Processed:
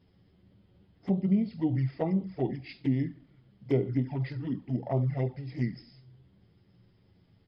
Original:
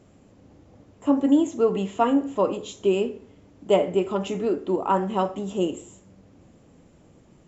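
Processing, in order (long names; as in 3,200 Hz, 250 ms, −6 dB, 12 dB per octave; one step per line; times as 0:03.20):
pitch shifter −6.5 semitones
flanger swept by the level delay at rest 11.8 ms, full sweep at −17.5 dBFS
thirty-one-band graphic EQ 125 Hz +11 dB, 2,000 Hz +4 dB, 3,150 Hz +11 dB
level −7.5 dB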